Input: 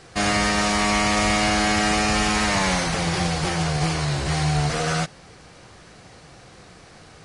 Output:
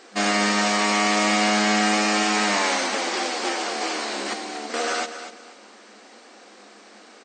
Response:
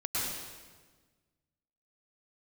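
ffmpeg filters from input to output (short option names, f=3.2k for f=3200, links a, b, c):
-filter_complex "[0:a]asettb=1/sr,asplit=3[a][b][c];[a]atrim=end=4.334[d];[b]atrim=start=4.33:end=4.74,asetpts=PTS-STARTPTS,afade=t=in:d=0.004:c=qsin,afade=t=out:st=0.406:d=0.004:c=qsin,acrossover=split=360[e][f];[f]acompressor=threshold=-36dB:ratio=2.5[g];[e][g]amix=inputs=2:normalize=0[h];[c]atrim=start=4.736[i];[d][h]acrossfade=d=0.004:c1=hsin:c2=qsin[j];[j][i]acrossfade=d=0.004:c1=qsin:c2=hsin,aecho=1:1:243|486|729:0.282|0.0761|0.0205,afftfilt=real='re*between(b*sr/4096,200,8800)':imag='im*between(b*sr/4096,200,8800)':win_size=4096:overlap=0.75"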